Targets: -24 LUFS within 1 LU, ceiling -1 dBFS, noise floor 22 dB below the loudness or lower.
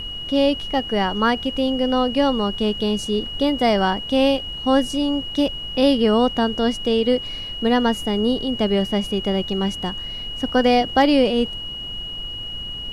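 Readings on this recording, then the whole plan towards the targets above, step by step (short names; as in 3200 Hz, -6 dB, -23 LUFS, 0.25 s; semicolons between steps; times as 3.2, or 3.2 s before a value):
steady tone 2900 Hz; tone level -29 dBFS; noise floor -31 dBFS; noise floor target -43 dBFS; loudness -20.5 LUFS; peak -4.5 dBFS; loudness target -24.0 LUFS
-> notch 2900 Hz, Q 30; noise print and reduce 12 dB; gain -3.5 dB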